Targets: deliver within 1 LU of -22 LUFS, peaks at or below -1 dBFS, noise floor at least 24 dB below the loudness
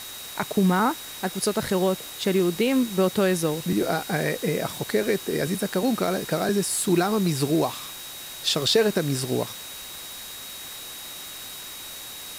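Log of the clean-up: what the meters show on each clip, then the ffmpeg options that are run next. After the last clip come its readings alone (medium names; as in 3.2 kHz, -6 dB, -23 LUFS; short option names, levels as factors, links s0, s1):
steady tone 3.8 kHz; tone level -41 dBFS; noise floor -38 dBFS; noise floor target -50 dBFS; loudness -25.5 LUFS; peak level -8.0 dBFS; loudness target -22.0 LUFS
-> -af "bandreject=f=3800:w=30"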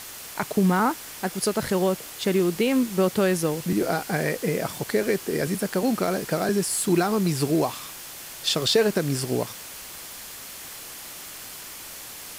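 steady tone not found; noise floor -40 dBFS; noise floor target -49 dBFS
-> -af "afftdn=nr=9:nf=-40"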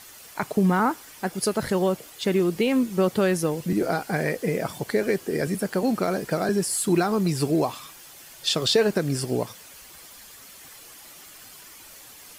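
noise floor -46 dBFS; noise floor target -49 dBFS
-> -af "afftdn=nr=6:nf=-46"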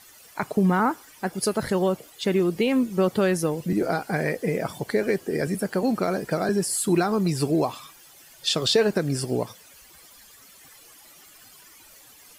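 noise floor -51 dBFS; loudness -24.5 LUFS; peak level -8.0 dBFS; loudness target -22.0 LUFS
-> -af "volume=1.33"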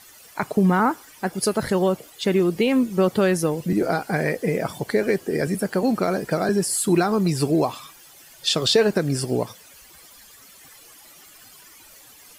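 loudness -22.0 LUFS; peak level -6.0 dBFS; noise floor -48 dBFS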